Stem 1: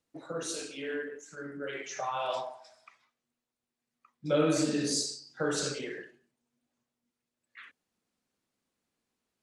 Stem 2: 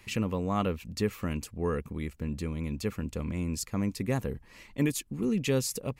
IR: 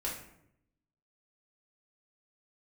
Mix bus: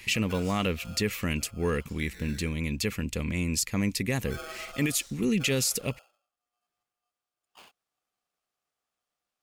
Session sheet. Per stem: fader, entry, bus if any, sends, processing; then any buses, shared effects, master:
−3.5 dB, 0.00 s, no send, ring modulator with a square carrier 960 Hz; automatic ducking −12 dB, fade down 1.00 s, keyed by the second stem
+2.5 dB, 0.00 s, no send, high shelf with overshoot 1,600 Hz +7.5 dB, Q 1.5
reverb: not used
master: brickwall limiter −16 dBFS, peak gain reduction 7 dB

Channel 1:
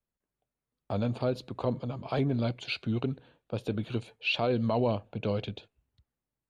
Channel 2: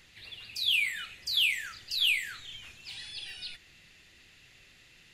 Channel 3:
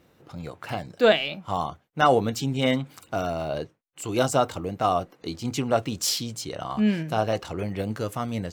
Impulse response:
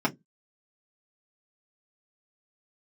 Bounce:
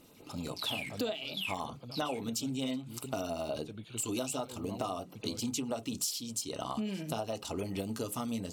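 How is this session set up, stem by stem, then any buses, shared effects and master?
−12.0 dB, 0.00 s, no send, no processing
−7.0 dB, 0.00 s, send −11 dB, adaptive Wiener filter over 25 samples; automatic ducking −16 dB, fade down 2.00 s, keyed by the third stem
−3.0 dB, 0.00 s, send −17 dB, parametric band 1,700 Hz −9.5 dB 0.5 octaves; notch filter 2,200 Hz, Q 14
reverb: on, RT60 0.15 s, pre-delay 3 ms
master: auto-filter notch sine 10 Hz 510–6,700 Hz; parametric band 9,600 Hz +13.5 dB 2.7 octaves; downward compressor 12 to 1, threshold −32 dBFS, peak gain reduction 20.5 dB

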